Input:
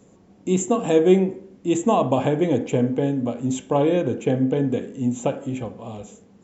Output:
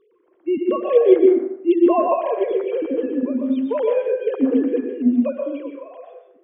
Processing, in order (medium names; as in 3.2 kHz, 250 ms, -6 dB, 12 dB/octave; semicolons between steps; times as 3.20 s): formants replaced by sine waves; on a send: reverberation RT60 0.75 s, pre-delay 117 ms, DRR 2 dB